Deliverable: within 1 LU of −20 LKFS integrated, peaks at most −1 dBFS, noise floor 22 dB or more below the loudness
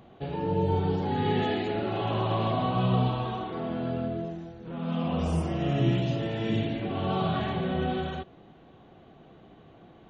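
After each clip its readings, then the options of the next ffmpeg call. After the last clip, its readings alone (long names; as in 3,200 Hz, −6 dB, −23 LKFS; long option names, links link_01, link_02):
integrated loudness −29.0 LKFS; sample peak −12.5 dBFS; target loudness −20.0 LKFS
→ -af "volume=9dB"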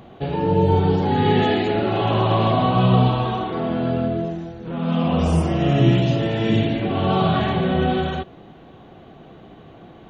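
integrated loudness −20.0 LKFS; sample peak −3.5 dBFS; background noise floor −45 dBFS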